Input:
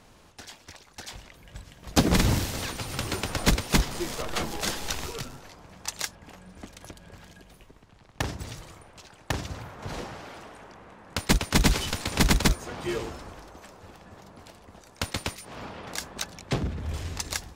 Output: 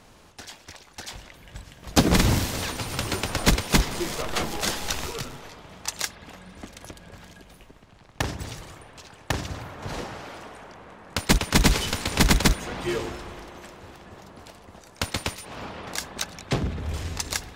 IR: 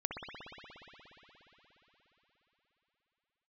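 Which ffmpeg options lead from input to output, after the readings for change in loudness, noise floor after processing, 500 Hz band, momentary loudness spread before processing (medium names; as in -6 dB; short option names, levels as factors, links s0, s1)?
+2.5 dB, -52 dBFS, +3.0 dB, 24 LU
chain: -filter_complex "[0:a]asplit=2[s0][s1];[1:a]atrim=start_sample=2205,lowshelf=f=160:g=-12[s2];[s1][s2]afir=irnorm=-1:irlink=0,volume=0.211[s3];[s0][s3]amix=inputs=2:normalize=0,volume=1.19"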